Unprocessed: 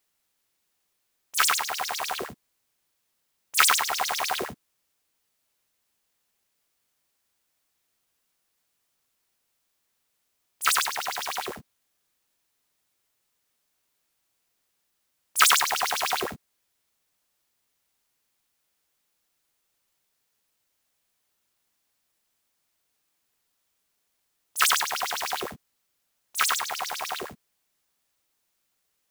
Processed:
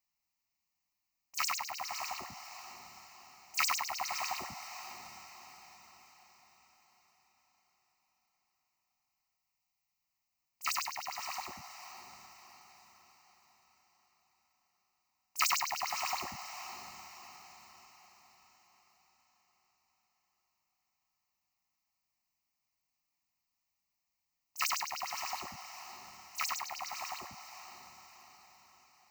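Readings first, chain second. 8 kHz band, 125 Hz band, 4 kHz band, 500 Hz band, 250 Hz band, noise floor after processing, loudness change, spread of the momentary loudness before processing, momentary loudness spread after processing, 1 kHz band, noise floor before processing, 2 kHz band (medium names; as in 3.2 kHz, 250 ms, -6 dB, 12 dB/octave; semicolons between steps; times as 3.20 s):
-11.5 dB, -8.5 dB, -11.5 dB, -14.0 dB, -12.5 dB, under -85 dBFS, -12.0 dB, 16 LU, 22 LU, -9.5 dB, -76 dBFS, -11.5 dB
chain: spectral selection erased 9.11–10.02 s, 220–1800 Hz; static phaser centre 2.3 kHz, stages 8; on a send: echo that smears into a reverb 574 ms, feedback 48%, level -10 dB; on the sum: trim -8 dB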